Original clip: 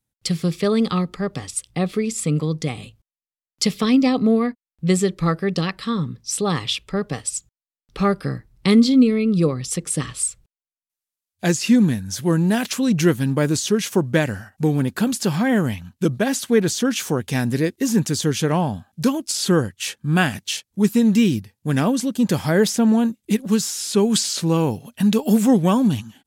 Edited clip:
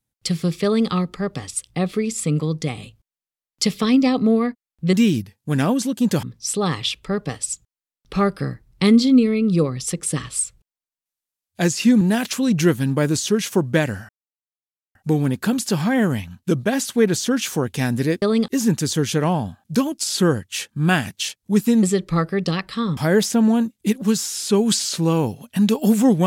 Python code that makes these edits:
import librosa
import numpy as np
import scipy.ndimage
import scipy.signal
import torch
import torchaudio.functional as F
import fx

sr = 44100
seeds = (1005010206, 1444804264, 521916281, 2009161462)

y = fx.edit(x, sr, fx.duplicate(start_s=0.64, length_s=0.26, to_s=17.76),
    fx.swap(start_s=4.93, length_s=1.14, other_s=21.11, other_length_s=1.3),
    fx.cut(start_s=11.85, length_s=0.56),
    fx.insert_silence(at_s=14.49, length_s=0.86), tone=tone)